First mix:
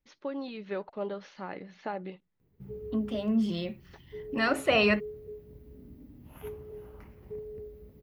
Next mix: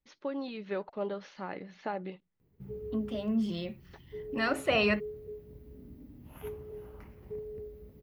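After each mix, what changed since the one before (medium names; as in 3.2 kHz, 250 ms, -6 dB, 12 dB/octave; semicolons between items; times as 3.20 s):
second voice -3.0 dB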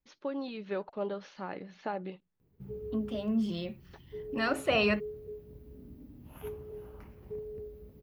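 master: add peaking EQ 2 kHz -4 dB 0.24 oct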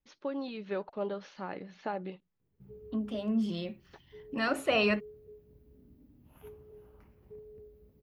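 background -9.0 dB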